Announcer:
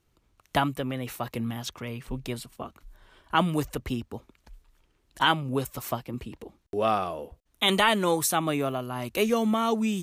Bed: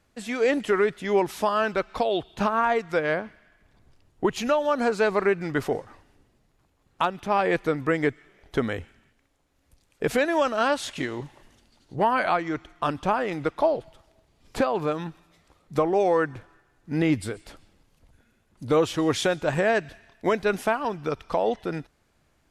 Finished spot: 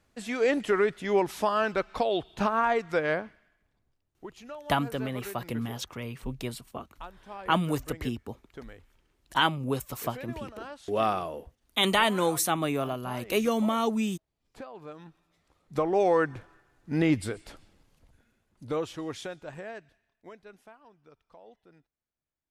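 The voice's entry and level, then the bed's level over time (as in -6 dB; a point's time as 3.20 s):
4.15 s, -1.5 dB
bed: 3.15 s -2.5 dB
4.00 s -19.5 dB
14.72 s -19.5 dB
16.03 s -1.5 dB
17.91 s -1.5 dB
20.73 s -28.5 dB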